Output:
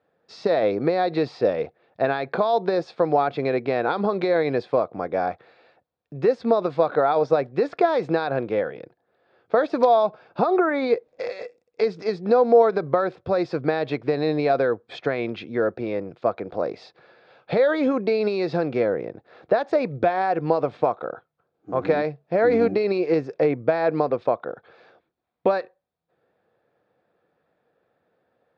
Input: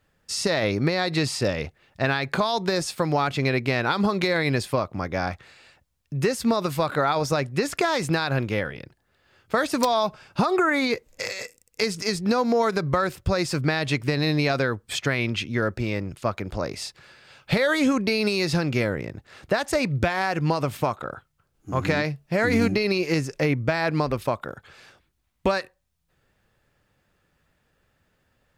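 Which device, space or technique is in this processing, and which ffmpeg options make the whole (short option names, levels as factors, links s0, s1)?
kitchen radio: -af "highpass=180,equalizer=f=340:t=q:w=4:g=4,equalizer=f=480:t=q:w=4:g=10,equalizer=f=710:t=q:w=4:g=9,equalizer=f=2000:t=q:w=4:g=-5,equalizer=f=2900:t=q:w=4:g=-10,lowpass=f=3600:w=0.5412,lowpass=f=3600:w=1.3066,volume=0.75"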